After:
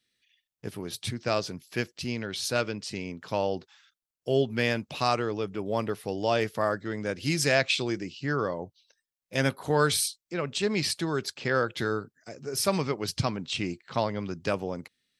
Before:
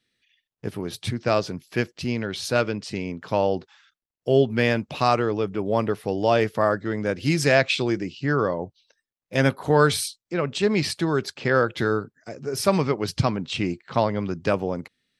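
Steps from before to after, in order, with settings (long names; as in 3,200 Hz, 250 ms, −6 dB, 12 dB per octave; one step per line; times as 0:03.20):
high-shelf EQ 3,100 Hz +8.5 dB
level −6.5 dB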